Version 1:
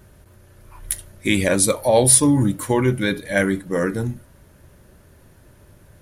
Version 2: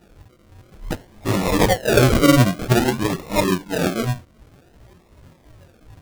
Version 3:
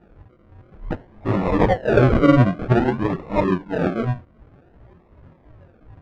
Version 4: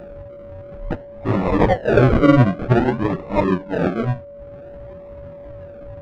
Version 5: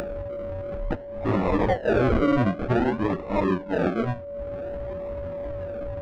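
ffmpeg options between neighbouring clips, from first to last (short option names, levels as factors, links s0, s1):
-af "afftfilt=real='re*pow(10,20/40*sin(2*PI*(1.8*log(max(b,1)*sr/1024/100)/log(2)-(-2.8)*(pts-256)/sr)))':imag='im*pow(10,20/40*sin(2*PI*(1.8*log(max(b,1)*sr/1024/100)/log(2)-(-2.8)*(pts-256)/sr)))':win_size=1024:overlap=0.75,flanger=delay=16:depth=7.9:speed=2.9,acrusher=samples=40:mix=1:aa=0.000001:lfo=1:lforange=24:lforate=0.53"
-af "lowpass=1700"
-filter_complex "[0:a]asplit=2[s0][s1];[s1]acompressor=mode=upward:threshold=0.0562:ratio=2.5,volume=0.75[s2];[s0][s2]amix=inputs=2:normalize=0,aeval=exprs='val(0)+0.0251*sin(2*PI*570*n/s)':c=same,volume=0.668"
-af "equalizer=f=140:w=3.9:g=-10.5,alimiter=limit=0.282:level=0:latency=1:release=42,acompressor=mode=upward:threshold=0.0891:ratio=2.5,volume=0.75"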